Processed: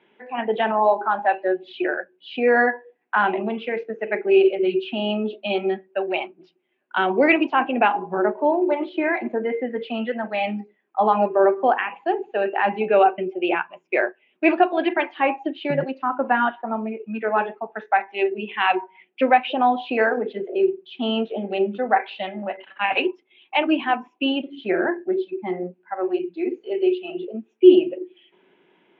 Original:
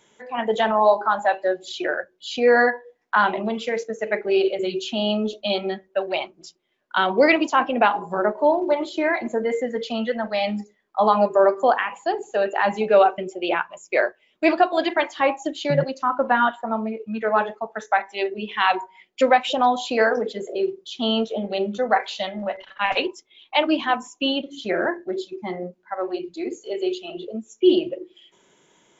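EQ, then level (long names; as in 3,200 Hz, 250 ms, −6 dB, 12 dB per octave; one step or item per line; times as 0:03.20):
high-frequency loss of the air 150 metres
loudspeaker in its box 170–3,500 Hz, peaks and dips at 180 Hz +6 dB, 260 Hz +6 dB, 370 Hz +9 dB, 790 Hz +6 dB, 1,600 Hz +4 dB, 2,600 Hz +8 dB
parametric band 2,300 Hz +2.5 dB 0.77 octaves
−4.0 dB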